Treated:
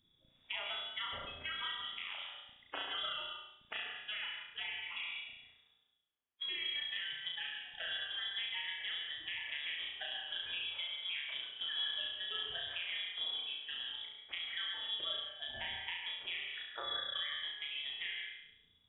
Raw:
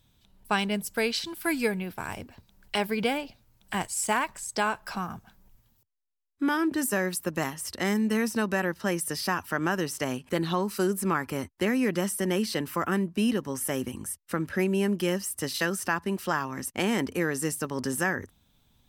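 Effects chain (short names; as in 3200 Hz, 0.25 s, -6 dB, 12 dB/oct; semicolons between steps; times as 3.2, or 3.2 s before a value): bin magnitudes rounded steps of 30 dB; HPF 150 Hz 12 dB/oct; spectral delete 16.46–17.09, 260–1400 Hz; compressor 4:1, threshold -36 dBFS, peak gain reduction 13 dB; flutter echo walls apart 5.9 m, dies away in 0.72 s; on a send at -4.5 dB: reverb RT60 0.35 s, pre-delay 0.1 s; on the sum: inverted band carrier 3600 Hz; gain -6 dB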